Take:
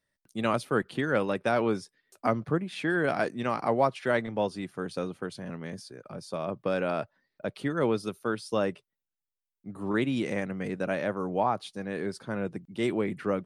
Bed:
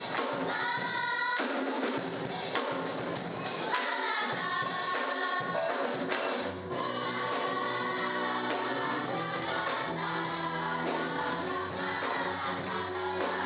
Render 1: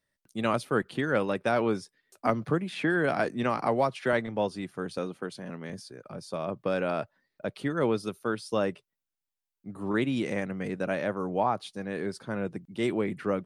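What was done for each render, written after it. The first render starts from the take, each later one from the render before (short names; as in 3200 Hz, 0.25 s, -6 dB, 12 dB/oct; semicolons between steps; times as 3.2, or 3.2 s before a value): 2.29–4.13 three-band squash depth 70%; 4.98–5.7 HPF 150 Hz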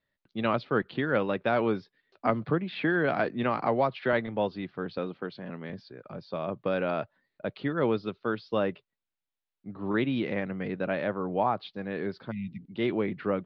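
12.33–12.64 spectral repair 220–1900 Hz after; steep low-pass 4400 Hz 48 dB/oct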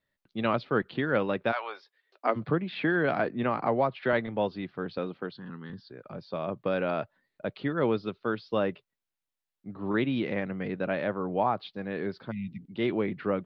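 1.51–2.35 HPF 870 Hz -> 280 Hz 24 dB/oct; 3.18–4.03 high shelf 4300 Hz -10.5 dB; 5.31–5.9 fixed phaser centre 2300 Hz, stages 6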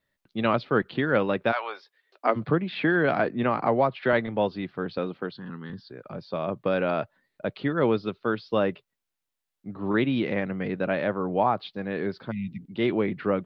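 gain +3.5 dB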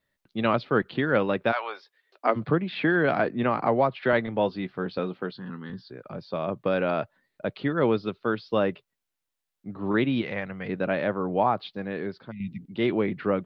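4.37–5.97 doubler 16 ms -12 dB; 10.21–10.69 bell 290 Hz -10 dB 1.6 oct; 11.73–12.4 fade out, to -8.5 dB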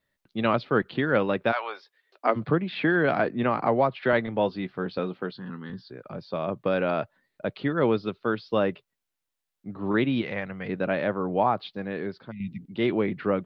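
nothing audible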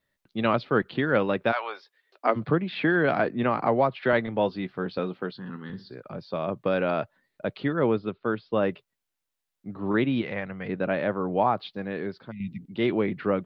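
5.41–6 flutter echo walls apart 10.7 m, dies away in 0.28 s; 7.76–8.63 air absorption 260 m; 9.8–11.11 high shelf 4600 Hz -6 dB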